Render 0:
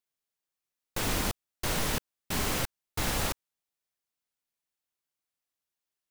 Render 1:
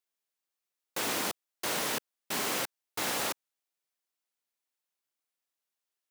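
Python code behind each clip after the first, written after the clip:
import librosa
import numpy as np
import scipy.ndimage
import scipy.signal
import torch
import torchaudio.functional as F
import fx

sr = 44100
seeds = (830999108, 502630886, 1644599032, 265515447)

y = scipy.signal.sosfilt(scipy.signal.butter(2, 290.0, 'highpass', fs=sr, output='sos'), x)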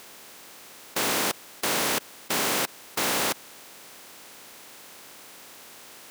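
y = fx.bin_compress(x, sr, power=0.4)
y = 10.0 ** (-22.5 / 20.0) * np.tanh(y / 10.0 ** (-22.5 / 20.0))
y = F.gain(torch.from_numpy(y), 4.5).numpy()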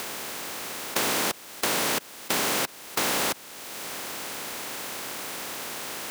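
y = fx.band_squash(x, sr, depth_pct=70)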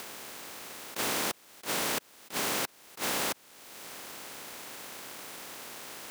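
y = fx.power_curve(x, sr, exponent=1.4)
y = fx.attack_slew(y, sr, db_per_s=290.0)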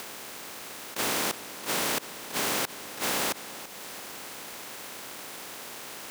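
y = fx.echo_feedback(x, sr, ms=335, feedback_pct=51, wet_db=-13.5)
y = F.gain(torch.from_numpy(y), 2.5).numpy()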